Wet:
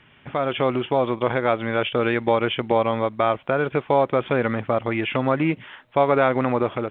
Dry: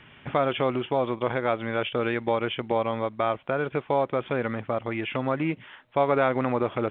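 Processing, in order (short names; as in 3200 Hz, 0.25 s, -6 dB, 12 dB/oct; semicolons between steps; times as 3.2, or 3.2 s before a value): AGC gain up to 10 dB; gain -3 dB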